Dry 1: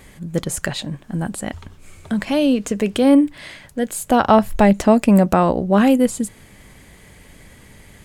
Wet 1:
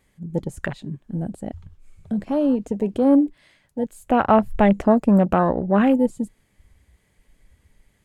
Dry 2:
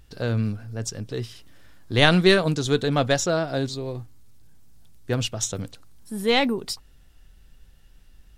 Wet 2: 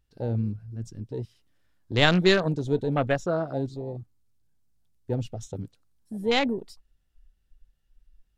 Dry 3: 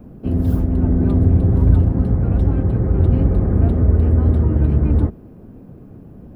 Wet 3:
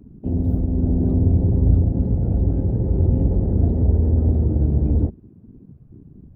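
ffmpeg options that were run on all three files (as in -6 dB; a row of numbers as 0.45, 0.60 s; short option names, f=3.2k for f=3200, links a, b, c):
-af "afwtdn=0.0501,volume=-3dB"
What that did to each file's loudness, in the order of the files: -3.0, -3.0, -3.0 LU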